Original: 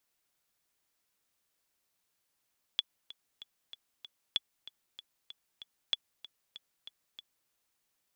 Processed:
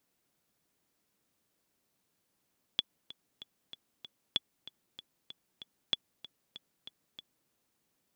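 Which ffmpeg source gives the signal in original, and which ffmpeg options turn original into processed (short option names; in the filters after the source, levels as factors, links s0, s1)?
-f lavfi -i "aevalsrc='pow(10,(-15-18*gte(mod(t,5*60/191),60/191))/20)*sin(2*PI*3410*mod(t,60/191))*exp(-6.91*mod(t,60/191)/0.03)':d=4.71:s=44100"
-af "equalizer=f=210:t=o:w=2.9:g=12.5"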